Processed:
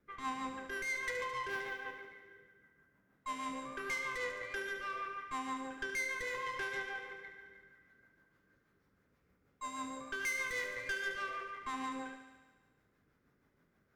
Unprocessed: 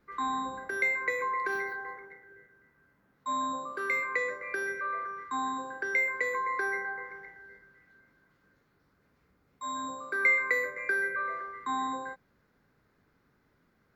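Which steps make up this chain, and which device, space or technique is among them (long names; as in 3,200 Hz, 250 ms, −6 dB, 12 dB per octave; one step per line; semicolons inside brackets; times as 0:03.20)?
overdriven rotary cabinet (tube saturation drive 33 dB, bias 0.6; rotating-speaker cabinet horn 6.3 Hz)
parametric band 4,300 Hz −5.5 dB 0.28 octaves
feedback echo with a high-pass in the loop 72 ms, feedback 70%, high-pass 150 Hz, level −9 dB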